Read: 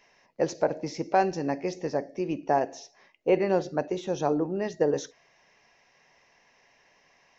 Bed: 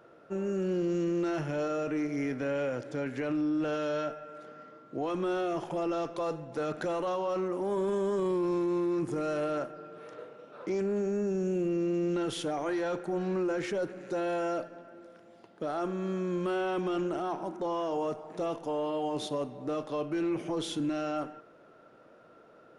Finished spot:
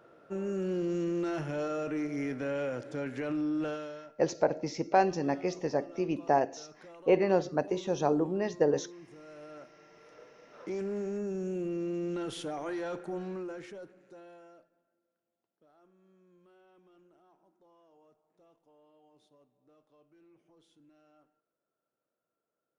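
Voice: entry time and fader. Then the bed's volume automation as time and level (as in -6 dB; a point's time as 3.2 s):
3.80 s, -1.5 dB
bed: 3.66 s -2 dB
4.14 s -19.5 dB
9.21 s -19.5 dB
10.65 s -4.5 dB
13.12 s -4.5 dB
15.04 s -32 dB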